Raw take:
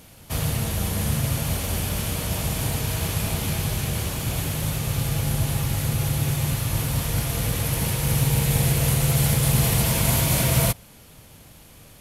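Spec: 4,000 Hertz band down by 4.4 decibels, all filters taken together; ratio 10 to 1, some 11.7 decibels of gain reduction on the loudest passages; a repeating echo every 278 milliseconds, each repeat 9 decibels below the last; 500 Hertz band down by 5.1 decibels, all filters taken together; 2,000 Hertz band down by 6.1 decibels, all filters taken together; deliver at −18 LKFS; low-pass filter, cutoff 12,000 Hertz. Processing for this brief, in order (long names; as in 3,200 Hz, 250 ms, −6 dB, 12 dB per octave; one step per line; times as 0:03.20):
low-pass filter 12,000 Hz
parametric band 500 Hz −6 dB
parametric band 2,000 Hz −6.5 dB
parametric band 4,000 Hz −3.5 dB
downward compressor 10 to 1, threshold −29 dBFS
repeating echo 278 ms, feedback 35%, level −9 dB
level +15 dB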